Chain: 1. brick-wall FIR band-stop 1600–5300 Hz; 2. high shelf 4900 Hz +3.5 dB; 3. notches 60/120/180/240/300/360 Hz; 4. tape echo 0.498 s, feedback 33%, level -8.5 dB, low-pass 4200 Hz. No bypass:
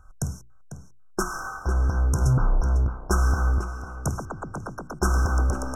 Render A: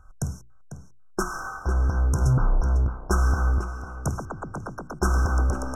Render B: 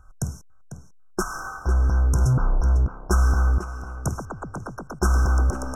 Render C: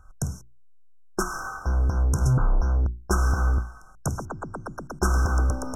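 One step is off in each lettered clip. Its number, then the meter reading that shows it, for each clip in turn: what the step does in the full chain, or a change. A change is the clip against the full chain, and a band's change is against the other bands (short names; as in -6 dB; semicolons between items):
2, 8 kHz band -2.5 dB; 3, 125 Hz band +2.0 dB; 4, echo-to-direct -13.5 dB to none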